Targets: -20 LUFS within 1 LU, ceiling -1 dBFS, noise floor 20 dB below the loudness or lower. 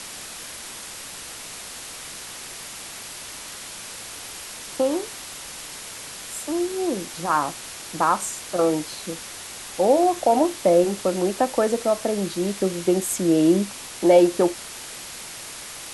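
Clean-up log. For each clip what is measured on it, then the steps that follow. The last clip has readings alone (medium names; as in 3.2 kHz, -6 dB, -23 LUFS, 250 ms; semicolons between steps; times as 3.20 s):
noise floor -38 dBFS; noise floor target -45 dBFS; loudness -24.5 LUFS; peak level -5.0 dBFS; loudness target -20.0 LUFS
-> noise reduction 7 dB, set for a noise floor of -38 dBFS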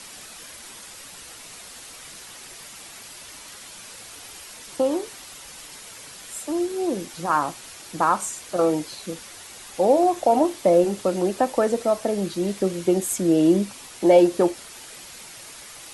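noise floor -42 dBFS; loudness -22.0 LUFS; peak level -5.5 dBFS; loudness target -20.0 LUFS
-> trim +2 dB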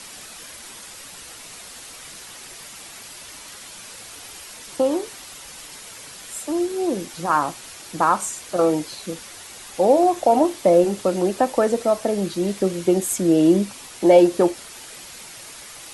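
loudness -20.0 LUFS; peak level -3.5 dBFS; noise floor -40 dBFS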